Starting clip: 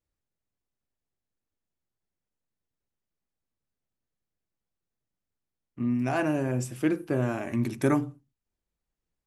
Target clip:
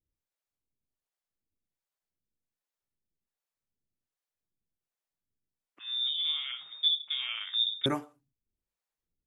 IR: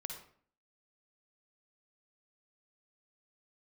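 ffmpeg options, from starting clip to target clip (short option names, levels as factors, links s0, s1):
-filter_complex "[0:a]acrossover=split=490[s0][s1];[s0]aeval=exprs='val(0)*(1-1/2+1/2*cos(2*PI*1.3*n/s))':c=same[s2];[s1]aeval=exprs='val(0)*(1-1/2-1/2*cos(2*PI*1.3*n/s))':c=same[s3];[s2][s3]amix=inputs=2:normalize=0,asettb=1/sr,asplit=3[s4][s5][s6];[s4]atrim=end=5.794[s7];[s5]atrim=start=5.79:end=7.86,asetpts=PTS-STARTPTS,afade=t=in:d=0.004:c=qsin,afade=t=out:st=2.066:d=0.004:c=qsin,lowpass=f=3200:t=q:w=0.5098,lowpass=f=3200:t=q:w=0.6013,lowpass=f=3200:t=q:w=0.9,lowpass=f=3200:t=q:w=2.563,afreqshift=-3800[s8];[s6]atrim=start=7.856[s9];[s7][s8]acrossfade=d=0.004:c1=hsin:c2=qsin[s10];[s10][s9]acrossfade=d=0.004:c1=qsin:c2=hsin"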